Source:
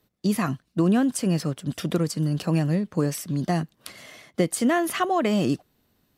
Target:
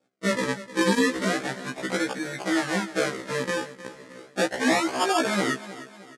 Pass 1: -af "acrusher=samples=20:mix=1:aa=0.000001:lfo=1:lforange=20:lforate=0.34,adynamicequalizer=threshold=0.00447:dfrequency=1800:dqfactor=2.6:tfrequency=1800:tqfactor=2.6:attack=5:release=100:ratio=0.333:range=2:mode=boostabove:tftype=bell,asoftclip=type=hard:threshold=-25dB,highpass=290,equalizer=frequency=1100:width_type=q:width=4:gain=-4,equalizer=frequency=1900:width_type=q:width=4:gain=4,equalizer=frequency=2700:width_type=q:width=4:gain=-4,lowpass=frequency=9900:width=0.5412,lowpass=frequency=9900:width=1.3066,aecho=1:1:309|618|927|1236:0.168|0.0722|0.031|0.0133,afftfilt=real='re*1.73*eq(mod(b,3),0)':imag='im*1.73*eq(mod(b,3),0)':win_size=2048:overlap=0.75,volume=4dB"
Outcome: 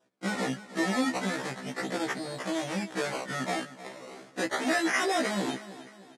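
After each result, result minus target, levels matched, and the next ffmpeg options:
hard clipping: distortion +18 dB; sample-and-hold swept by an LFO: distortion −7 dB
-af "acrusher=samples=20:mix=1:aa=0.000001:lfo=1:lforange=20:lforate=0.34,adynamicequalizer=threshold=0.00447:dfrequency=1800:dqfactor=2.6:tfrequency=1800:tqfactor=2.6:attack=5:release=100:ratio=0.333:range=2:mode=boostabove:tftype=bell,asoftclip=type=hard:threshold=-14dB,highpass=290,equalizer=frequency=1100:width_type=q:width=4:gain=-4,equalizer=frequency=1900:width_type=q:width=4:gain=4,equalizer=frequency=2700:width_type=q:width=4:gain=-4,lowpass=frequency=9900:width=0.5412,lowpass=frequency=9900:width=1.3066,aecho=1:1:309|618|927|1236:0.168|0.0722|0.031|0.0133,afftfilt=real='re*1.73*eq(mod(b,3),0)':imag='im*1.73*eq(mod(b,3),0)':win_size=2048:overlap=0.75,volume=4dB"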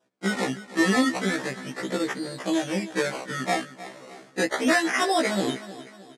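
sample-and-hold swept by an LFO: distortion −7 dB
-af "acrusher=samples=43:mix=1:aa=0.000001:lfo=1:lforange=43:lforate=0.34,adynamicequalizer=threshold=0.00447:dfrequency=1800:dqfactor=2.6:tfrequency=1800:tqfactor=2.6:attack=5:release=100:ratio=0.333:range=2:mode=boostabove:tftype=bell,asoftclip=type=hard:threshold=-14dB,highpass=290,equalizer=frequency=1100:width_type=q:width=4:gain=-4,equalizer=frequency=1900:width_type=q:width=4:gain=4,equalizer=frequency=2700:width_type=q:width=4:gain=-4,lowpass=frequency=9900:width=0.5412,lowpass=frequency=9900:width=1.3066,aecho=1:1:309|618|927|1236:0.168|0.0722|0.031|0.0133,afftfilt=real='re*1.73*eq(mod(b,3),0)':imag='im*1.73*eq(mod(b,3),0)':win_size=2048:overlap=0.75,volume=4dB"

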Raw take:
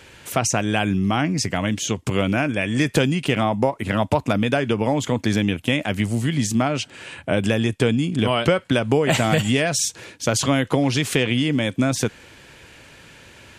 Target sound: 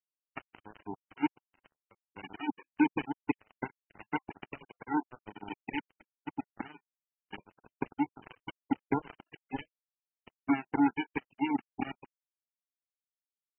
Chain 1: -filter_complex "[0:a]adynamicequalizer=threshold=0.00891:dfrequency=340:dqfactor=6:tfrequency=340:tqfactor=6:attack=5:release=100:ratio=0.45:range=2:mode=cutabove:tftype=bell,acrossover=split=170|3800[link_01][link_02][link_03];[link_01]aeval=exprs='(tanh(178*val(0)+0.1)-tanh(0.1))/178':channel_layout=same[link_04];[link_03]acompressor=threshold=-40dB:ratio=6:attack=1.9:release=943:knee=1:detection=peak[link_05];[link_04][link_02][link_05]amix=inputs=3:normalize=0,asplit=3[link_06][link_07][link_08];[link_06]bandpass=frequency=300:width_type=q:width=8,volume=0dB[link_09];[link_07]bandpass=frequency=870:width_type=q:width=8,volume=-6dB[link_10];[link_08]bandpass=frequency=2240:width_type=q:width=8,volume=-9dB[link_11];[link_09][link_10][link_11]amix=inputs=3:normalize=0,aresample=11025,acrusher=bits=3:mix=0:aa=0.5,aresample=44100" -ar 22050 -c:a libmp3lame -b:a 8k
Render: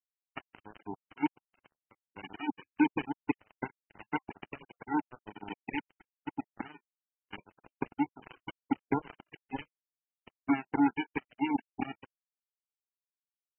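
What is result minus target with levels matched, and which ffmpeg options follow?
downward compressor: peak gain reduction −6 dB
-filter_complex "[0:a]adynamicequalizer=threshold=0.00891:dfrequency=340:dqfactor=6:tfrequency=340:tqfactor=6:attack=5:release=100:ratio=0.45:range=2:mode=cutabove:tftype=bell,acrossover=split=170|3800[link_01][link_02][link_03];[link_01]aeval=exprs='(tanh(178*val(0)+0.1)-tanh(0.1))/178':channel_layout=same[link_04];[link_03]acompressor=threshold=-47.5dB:ratio=6:attack=1.9:release=943:knee=1:detection=peak[link_05];[link_04][link_02][link_05]amix=inputs=3:normalize=0,asplit=3[link_06][link_07][link_08];[link_06]bandpass=frequency=300:width_type=q:width=8,volume=0dB[link_09];[link_07]bandpass=frequency=870:width_type=q:width=8,volume=-6dB[link_10];[link_08]bandpass=frequency=2240:width_type=q:width=8,volume=-9dB[link_11];[link_09][link_10][link_11]amix=inputs=3:normalize=0,aresample=11025,acrusher=bits=3:mix=0:aa=0.5,aresample=44100" -ar 22050 -c:a libmp3lame -b:a 8k

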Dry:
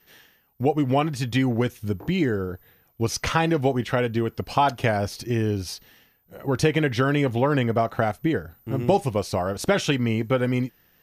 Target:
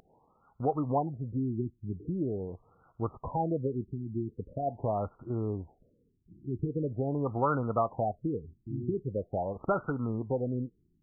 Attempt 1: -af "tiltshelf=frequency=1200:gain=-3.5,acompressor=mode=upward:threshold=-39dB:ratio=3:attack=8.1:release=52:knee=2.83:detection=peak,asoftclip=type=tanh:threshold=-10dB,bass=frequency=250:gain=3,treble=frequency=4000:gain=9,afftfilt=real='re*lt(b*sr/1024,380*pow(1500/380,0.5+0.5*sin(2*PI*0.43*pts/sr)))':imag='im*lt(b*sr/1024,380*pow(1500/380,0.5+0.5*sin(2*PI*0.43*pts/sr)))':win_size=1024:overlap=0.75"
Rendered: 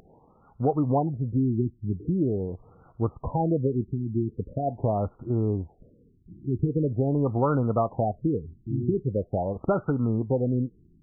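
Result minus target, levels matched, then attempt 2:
1,000 Hz band −4.0 dB
-af "tiltshelf=frequency=1200:gain=-12,acompressor=mode=upward:threshold=-39dB:ratio=3:attack=8.1:release=52:knee=2.83:detection=peak,asoftclip=type=tanh:threshold=-10dB,bass=frequency=250:gain=3,treble=frequency=4000:gain=9,afftfilt=real='re*lt(b*sr/1024,380*pow(1500/380,0.5+0.5*sin(2*PI*0.43*pts/sr)))':imag='im*lt(b*sr/1024,380*pow(1500/380,0.5+0.5*sin(2*PI*0.43*pts/sr)))':win_size=1024:overlap=0.75"

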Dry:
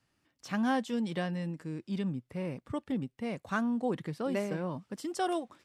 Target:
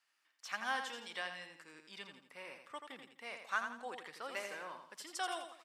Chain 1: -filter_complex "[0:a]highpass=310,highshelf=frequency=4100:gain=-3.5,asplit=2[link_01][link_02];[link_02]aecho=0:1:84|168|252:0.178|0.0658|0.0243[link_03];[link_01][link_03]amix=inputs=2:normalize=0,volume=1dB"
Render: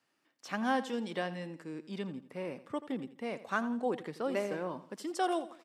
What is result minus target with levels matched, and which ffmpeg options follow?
250 Hz band +14.0 dB; echo-to-direct −8 dB
-filter_complex "[0:a]highpass=1200,highshelf=frequency=4100:gain=-3.5,asplit=2[link_01][link_02];[link_02]aecho=0:1:84|168|252|336:0.447|0.165|0.0612|0.0226[link_03];[link_01][link_03]amix=inputs=2:normalize=0,volume=1dB"

